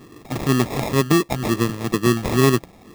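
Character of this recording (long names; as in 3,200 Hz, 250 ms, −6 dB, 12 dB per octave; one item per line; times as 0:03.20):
phaser sweep stages 2, 2.1 Hz, lowest notch 360–1,900 Hz
aliases and images of a low sample rate 1,500 Hz, jitter 0%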